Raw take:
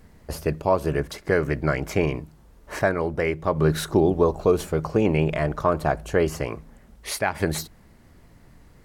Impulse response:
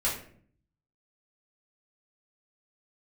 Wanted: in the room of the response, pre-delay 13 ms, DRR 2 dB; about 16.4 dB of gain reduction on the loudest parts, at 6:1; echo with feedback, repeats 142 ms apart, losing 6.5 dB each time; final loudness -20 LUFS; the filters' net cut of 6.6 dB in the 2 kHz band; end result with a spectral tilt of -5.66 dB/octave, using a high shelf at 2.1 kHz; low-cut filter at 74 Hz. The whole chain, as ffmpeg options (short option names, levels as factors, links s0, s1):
-filter_complex "[0:a]highpass=74,equalizer=f=2000:t=o:g=-6.5,highshelf=f=2100:g=-4,acompressor=threshold=0.0224:ratio=6,aecho=1:1:142|284|426|568|710|852:0.473|0.222|0.105|0.0491|0.0231|0.0109,asplit=2[s0][s1];[1:a]atrim=start_sample=2205,adelay=13[s2];[s1][s2]afir=irnorm=-1:irlink=0,volume=0.299[s3];[s0][s3]amix=inputs=2:normalize=0,volume=5.96"